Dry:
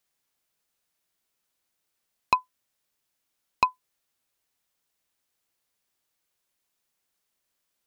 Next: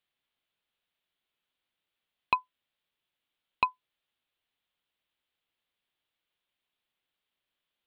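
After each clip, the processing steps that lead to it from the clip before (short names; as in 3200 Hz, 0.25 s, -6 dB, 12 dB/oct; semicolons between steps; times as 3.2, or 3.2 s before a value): resonant high shelf 4500 Hz -10.5 dB, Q 3; gain -5 dB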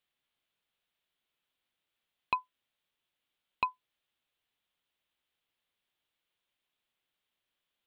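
limiter -14.5 dBFS, peak gain reduction 5 dB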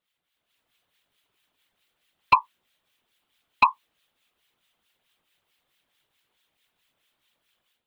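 harmonic tremolo 4.6 Hz, crossover 1400 Hz; AGC gain up to 9 dB; whisperiser; gain +7 dB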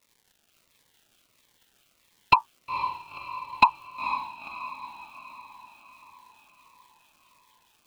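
crackle 340/s -54 dBFS; diffused feedback echo 0.486 s, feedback 56%, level -10.5 dB; cascading phaser falling 1.5 Hz; gain +4.5 dB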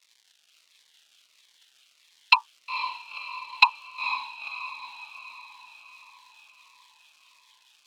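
band-pass 3900 Hz, Q 1; gain +8.5 dB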